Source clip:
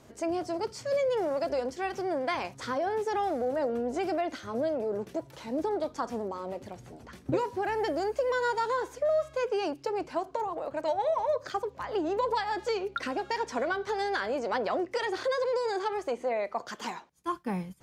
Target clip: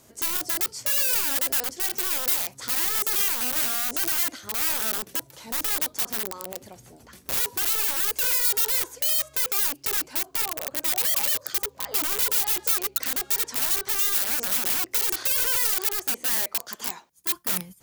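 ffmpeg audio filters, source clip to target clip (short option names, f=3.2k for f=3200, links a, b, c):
-af "aeval=exprs='(mod(23.7*val(0)+1,2)-1)/23.7':c=same,aemphasis=mode=production:type=75fm,volume=-2dB"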